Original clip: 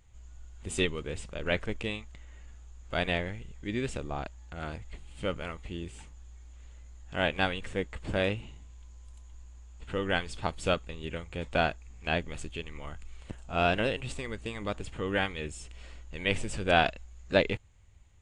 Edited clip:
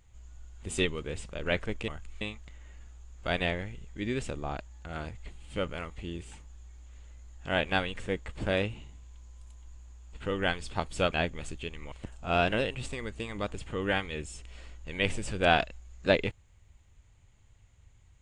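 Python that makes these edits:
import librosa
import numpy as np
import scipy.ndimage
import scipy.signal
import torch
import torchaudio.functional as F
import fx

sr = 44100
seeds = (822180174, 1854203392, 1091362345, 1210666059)

y = fx.edit(x, sr, fx.cut(start_s=10.79, length_s=1.26),
    fx.move(start_s=12.85, length_s=0.33, to_s=1.88), tone=tone)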